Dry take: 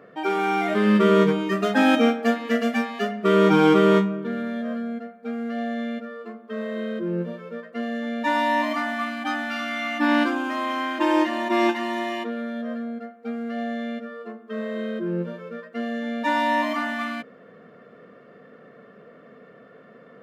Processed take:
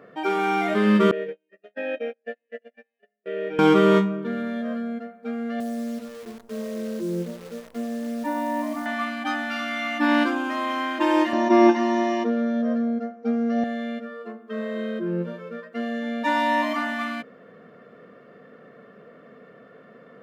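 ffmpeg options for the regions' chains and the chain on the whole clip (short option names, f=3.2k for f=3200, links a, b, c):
-filter_complex "[0:a]asettb=1/sr,asplit=3[a][b][c];[a]atrim=end=1.114[d];[b]atrim=start=1.11:end=3.59,asetpts=PTS-STARTPTS,afade=t=in:d=0.004:c=qsin,afade=t=out:st=2.476:d=0.004:c=qsin,acrossover=split=4000[e][f];[f]acompressor=threshold=-45dB:ratio=4:attack=1:release=60[g];[e][g]amix=inputs=2:normalize=0,agate=range=-36dB:threshold=-20dB:ratio=16:release=100:detection=peak,asplit=3[h][i][j];[h]bandpass=f=530:t=q:w=8,volume=0dB[k];[i]bandpass=f=1.84k:t=q:w=8,volume=-6dB[l];[j]bandpass=f=2.48k:t=q:w=8,volume=-9dB[m];[k][l][m]amix=inputs=3:normalize=0[n];[c]atrim=start=3.586[o];[d][n]acrossfade=d=0.004:c1=hsin:c2=qsin[p];[p][o]acrossfade=d=0.004:c1=qsin:c2=hsin,asettb=1/sr,asplit=3[q][r][s];[q]atrim=end=5.604[t];[r]atrim=start=5.6:end=8.86,asetpts=PTS-STARTPTS,afade=t=in:d=0.004:c=qsin,afade=t=out:st=3.256:d=0.004:c=qsin,bandpass=f=290:t=q:w=0.64,acrusher=bits=8:dc=4:mix=0:aa=0.000001[u];[s]atrim=start=8.856[v];[t][u]acrossfade=d=0.004:c1=hsin:c2=qsin[w];[w][v]acrossfade=d=0.004:c1=qsin:c2=hsin,asettb=1/sr,asplit=3[x][y][z];[x]atrim=end=11.334[aa];[y]atrim=start=11.33:end=13.64,asetpts=PTS-STARTPTS,afade=t=in:d=0.004:c=qsin,afade=t=out:st=2.306:d=0.004:c=qsin,lowpass=f=5.8k:t=q:w=8,tiltshelf=f=1.4k:g=7.5,acrossover=split=2900[ab][ac];[ac]acompressor=threshold=-42dB:ratio=4:attack=1:release=60[ad];[ab][ad]amix=inputs=2:normalize=0[ae];[z]atrim=start=13.636[af];[aa][ae]acrossfade=d=0.004:c1=hsin:c2=qsin[ag];[ag][af]acrossfade=d=0.004:c1=qsin:c2=hsin"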